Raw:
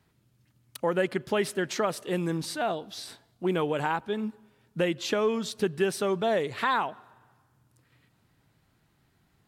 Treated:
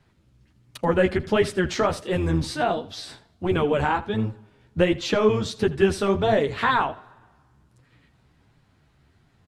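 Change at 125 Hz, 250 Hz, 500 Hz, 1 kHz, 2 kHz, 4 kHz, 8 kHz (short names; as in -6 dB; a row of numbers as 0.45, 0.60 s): +9.0, +6.0, +5.5, +5.0, +5.0, +4.0, +0.5 dB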